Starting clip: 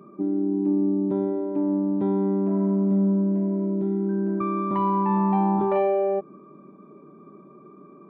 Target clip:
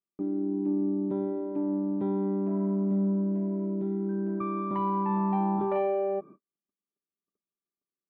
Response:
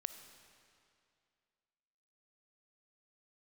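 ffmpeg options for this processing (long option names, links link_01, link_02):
-af "agate=range=-50dB:threshold=-40dB:ratio=16:detection=peak,volume=-5.5dB"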